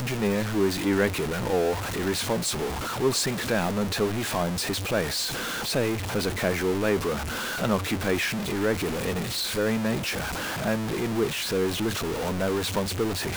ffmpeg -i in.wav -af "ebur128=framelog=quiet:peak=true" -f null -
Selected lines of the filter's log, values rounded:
Integrated loudness:
  I:         -26.5 LUFS
  Threshold: -36.5 LUFS
Loudness range:
  LRA:         1.2 LU
  Threshold: -46.5 LUFS
  LRA low:   -27.1 LUFS
  LRA high:  -25.9 LUFS
True peak:
  Peak:       -8.6 dBFS